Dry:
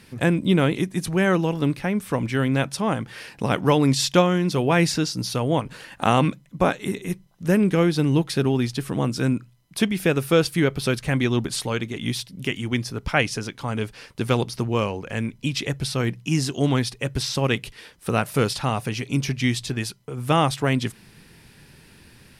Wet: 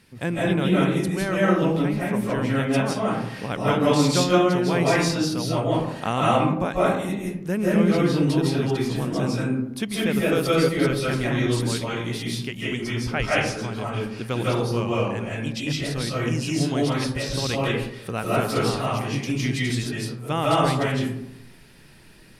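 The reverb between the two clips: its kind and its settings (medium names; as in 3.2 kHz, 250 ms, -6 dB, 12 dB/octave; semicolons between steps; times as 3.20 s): algorithmic reverb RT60 0.81 s, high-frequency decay 0.4×, pre-delay 120 ms, DRR -6.5 dB; trim -7 dB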